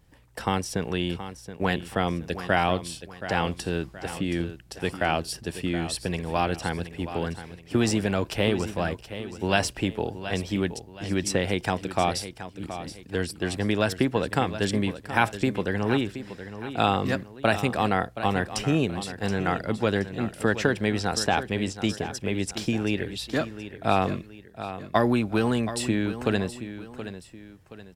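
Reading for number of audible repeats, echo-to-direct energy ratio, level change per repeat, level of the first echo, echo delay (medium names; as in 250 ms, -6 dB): 2, -11.5 dB, -8.0 dB, -12.0 dB, 724 ms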